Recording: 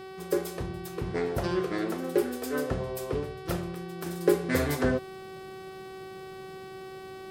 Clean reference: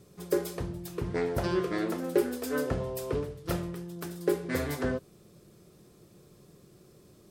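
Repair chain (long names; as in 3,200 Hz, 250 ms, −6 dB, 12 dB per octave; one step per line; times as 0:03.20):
hum removal 379.6 Hz, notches 14
level correction −4.5 dB, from 0:04.06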